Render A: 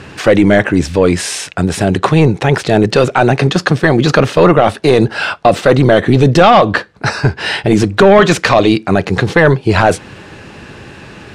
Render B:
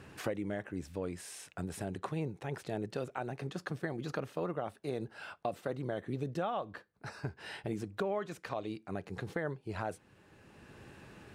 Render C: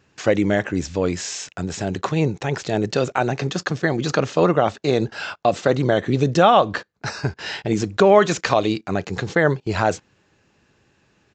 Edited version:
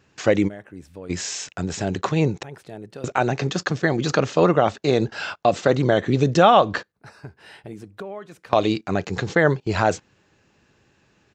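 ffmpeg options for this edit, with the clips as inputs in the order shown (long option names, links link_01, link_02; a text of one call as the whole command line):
ffmpeg -i take0.wav -i take1.wav -i take2.wav -filter_complex "[1:a]asplit=3[link_01][link_02][link_03];[2:a]asplit=4[link_04][link_05][link_06][link_07];[link_04]atrim=end=0.49[link_08];[link_01]atrim=start=0.47:end=1.11[link_09];[link_05]atrim=start=1.09:end=2.432[link_10];[link_02]atrim=start=2.428:end=3.042[link_11];[link_06]atrim=start=3.038:end=6.922[link_12];[link_03]atrim=start=6.918:end=8.532[link_13];[link_07]atrim=start=8.528[link_14];[link_08][link_09]acrossfade=duration=0.02:curve1=tri:curve2=tri[link_15];[link_15][link_10]acrossfade=duration=0.02:curve1=tri:curve2=tri[link_16];[link_16][link_11]acrossfade=duration=0.004:curve1=hsin:curve2=hsin[link_17];[link_17][link_12]acrossfade=duration=0.004:curve1=hsin:curve2=hsin[link_18];[link_18][link_13]acrossfade=duration=0.004:curve1=hsin:curve2=hsin[link_19];[link_19][link_14]acrossfade=duration=0.004:curve1=hsin:curve2=hsin" out.wav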